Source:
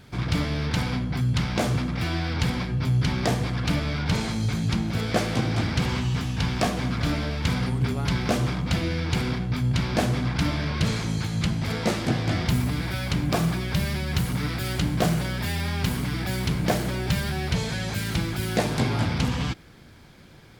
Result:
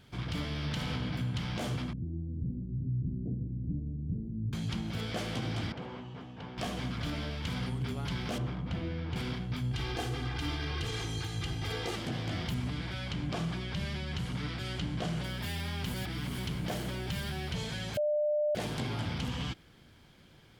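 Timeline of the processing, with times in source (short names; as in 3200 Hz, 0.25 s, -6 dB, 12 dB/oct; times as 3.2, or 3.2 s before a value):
0.48–1.12 reverb throw, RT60 2.8 s, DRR 1 dB
1.93–4.53 inverse Chebyshev low-pass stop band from 1100 Hz, stop band 60 dB
5.72–6.58 band-pass 540 Hz, Q 0.93
8.38–9.16 LPF 1300 Hz 6 dB/oct
9.72–11.96 comb 2.5 ms, depth 89%
12.54–15.24 LPF 6800 Hz
15.94–16.38 reverse
17.97–18.55 bleep 598 Hz -13.5 dBFS
whole clip: limiter -17 dBFS; bell 3100 Hz +7.5 dB 0.26 oct; gain -9 dB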